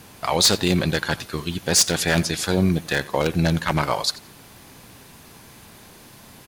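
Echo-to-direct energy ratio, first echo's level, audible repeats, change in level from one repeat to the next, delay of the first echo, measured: -20.0 dB, -20.0 dB, 2, -14.5 dB, 86 ms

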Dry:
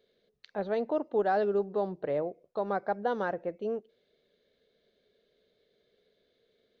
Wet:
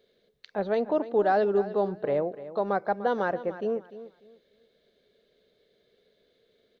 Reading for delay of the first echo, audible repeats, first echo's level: 297 ms, 2, -14.5 dB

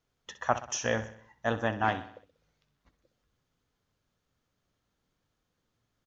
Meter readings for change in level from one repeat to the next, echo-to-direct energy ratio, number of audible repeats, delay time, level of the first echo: -6.0 dB, -12.0 dB, 4, 63 ms, -13.5 dB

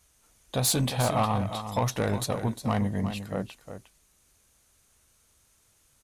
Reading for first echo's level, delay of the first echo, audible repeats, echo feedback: -10.0 dB, 356 ms, 1, no regular repeats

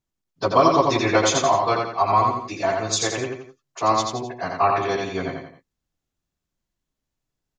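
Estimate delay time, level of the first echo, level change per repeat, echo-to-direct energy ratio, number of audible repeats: 86 ms, -3.5 dB, -7.5 dB, -2.5 dB, 3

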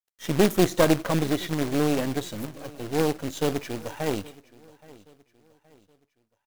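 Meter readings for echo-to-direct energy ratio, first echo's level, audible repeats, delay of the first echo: -21.5 dB, -22.0 dB, 2, 822 ms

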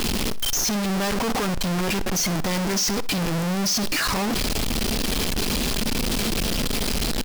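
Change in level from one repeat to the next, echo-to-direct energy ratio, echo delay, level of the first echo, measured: -12.0 dB, -17.5 dB, 62 ms, -18.0 dB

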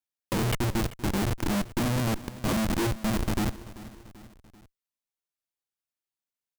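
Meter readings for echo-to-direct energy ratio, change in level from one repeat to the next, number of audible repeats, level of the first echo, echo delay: -15.5 dB, -5.5 dB, 3, -17.0 dB, 388 ms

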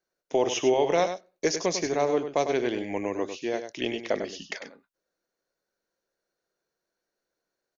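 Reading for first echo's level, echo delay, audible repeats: -9.0 dB, 99 ms, 1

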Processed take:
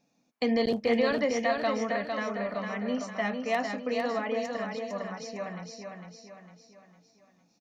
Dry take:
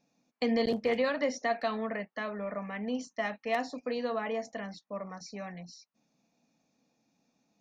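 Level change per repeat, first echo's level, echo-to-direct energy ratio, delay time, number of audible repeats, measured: -7.0 dB, -5.0 dB, -4.0 dB, 454 ms, 5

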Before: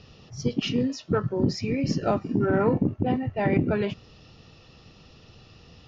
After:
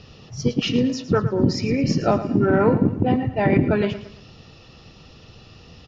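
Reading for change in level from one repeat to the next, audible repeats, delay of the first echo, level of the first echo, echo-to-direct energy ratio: -8.0 dB, 3, 111 ms, -13.0 dB, -12.5 dB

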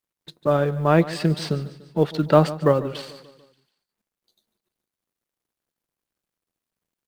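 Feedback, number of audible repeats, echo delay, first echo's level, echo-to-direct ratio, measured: 53%, 4, 146 ms, -17.0 dB, -15.5 dB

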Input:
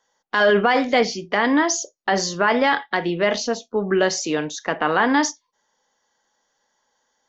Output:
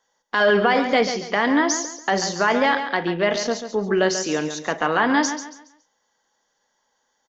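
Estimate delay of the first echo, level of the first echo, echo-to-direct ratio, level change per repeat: 139 ms, -9.5 dB, -9.0 dB, -10.0 dB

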